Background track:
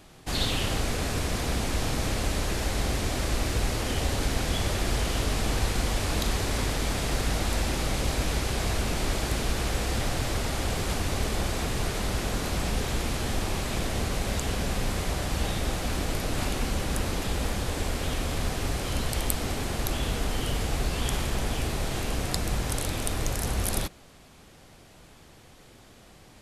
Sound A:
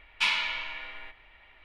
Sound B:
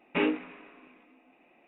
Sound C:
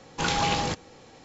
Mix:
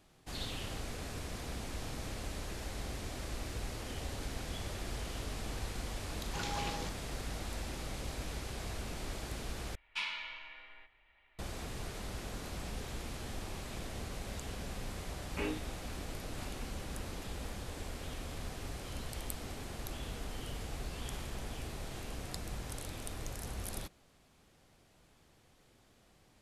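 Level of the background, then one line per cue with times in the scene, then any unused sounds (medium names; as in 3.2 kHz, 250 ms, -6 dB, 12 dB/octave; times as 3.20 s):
background track -13.5 dB
6.15 s: add C -14 dB
9.75 s: replace with A -12 dB
15.22 s: add B -11 dB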